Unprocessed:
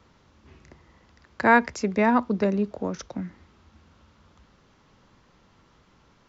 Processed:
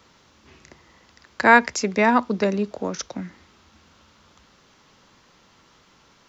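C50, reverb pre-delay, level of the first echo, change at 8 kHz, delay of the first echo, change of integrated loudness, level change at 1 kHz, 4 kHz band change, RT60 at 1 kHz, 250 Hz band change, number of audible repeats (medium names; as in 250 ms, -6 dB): no reverb, no reverb, no echo, no reading, no echo, +3.5 dB, +4.0 dB, +9.0 dB, no reverb, +0.5 dB, no echo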